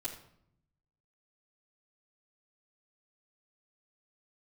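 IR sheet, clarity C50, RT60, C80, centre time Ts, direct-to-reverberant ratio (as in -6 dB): 8.0 dB, 0.70 s, 11.5 dB, 21 ms, -10.0 dB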